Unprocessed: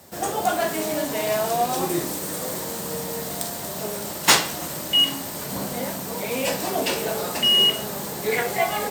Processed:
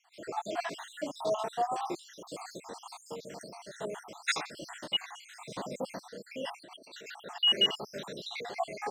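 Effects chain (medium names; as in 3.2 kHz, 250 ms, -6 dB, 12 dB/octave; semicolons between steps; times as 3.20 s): random holes in the spectrogram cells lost 66%; high-pass 330 Hz 6 dB/octave; 6.62–7.26 s: compressor with a negative ratio -40 dBFS, ratio -1; 7.98–8.55 s: peaking EQ 3.9 kHz +11.5 dB 0.41 oct; random-step tremolo; distance through air 110 m; trim -2 dB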